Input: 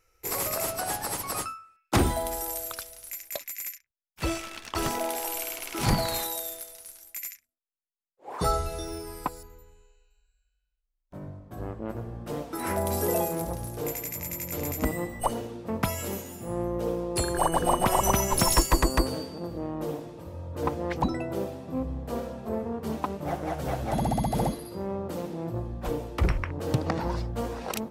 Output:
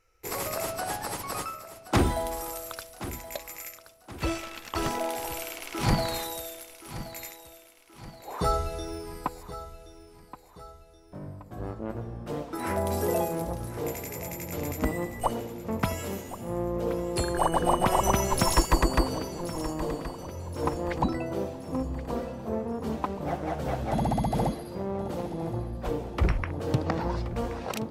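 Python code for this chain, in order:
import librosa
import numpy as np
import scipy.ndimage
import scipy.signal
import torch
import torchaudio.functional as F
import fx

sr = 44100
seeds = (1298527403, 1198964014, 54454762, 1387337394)

p1 = fx.high_shelf(x, sr, hz=7500.0, db=-8.5)
y = p1 + fx.echo_feedback(p1, sr, ms=1075, feedback_pct=46, wet_db=-14, dry=0)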